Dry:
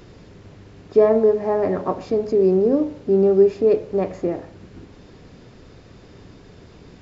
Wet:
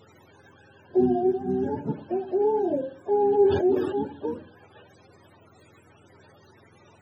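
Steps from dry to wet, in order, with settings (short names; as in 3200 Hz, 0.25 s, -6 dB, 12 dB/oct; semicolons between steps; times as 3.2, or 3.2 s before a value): spectrum mirrored in octaves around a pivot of 400 Hz; 3.19–3.99 sustainer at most 47 dB/s; gain -5.5 dB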